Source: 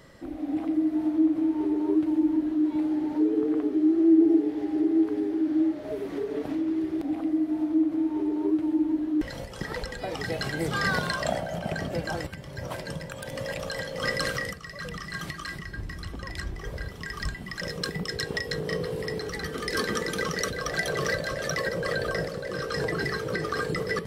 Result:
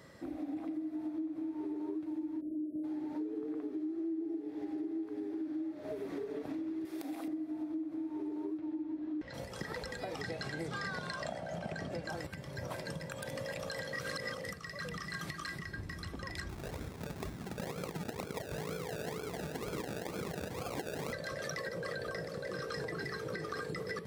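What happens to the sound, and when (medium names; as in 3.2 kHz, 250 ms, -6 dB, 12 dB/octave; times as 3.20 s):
2.41–2.84 s: spectral selection erased 670–8600 Hz
6.85–7.28 s: RIAA curve recording
8.58–9.34 s: low-pass 4.5 kHz
10.21–12.09 s: low-pass 8.8 kHz
13.93–14.44 s: reverse
16.49–21.13 s: decimation with a swept rate 33×, swing 60% 2.1 Hz
whole clip: high-pass 78 Hz; band-stop 3 kHz, Q 13; compression, threshold -33 dBFS; trim -3.5 dB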